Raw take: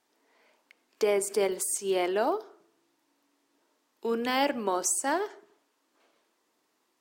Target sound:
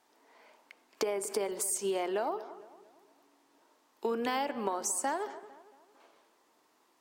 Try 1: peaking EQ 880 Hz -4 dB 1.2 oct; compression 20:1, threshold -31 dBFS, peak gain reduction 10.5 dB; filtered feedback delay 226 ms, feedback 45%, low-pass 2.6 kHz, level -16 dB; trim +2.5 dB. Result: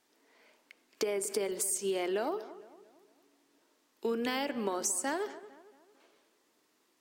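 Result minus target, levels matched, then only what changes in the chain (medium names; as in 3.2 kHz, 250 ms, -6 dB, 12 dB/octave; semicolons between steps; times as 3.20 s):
1 kHz band -4.5 dB
change: peaking EQ 880 Hz +5.5 dB 1.2 oct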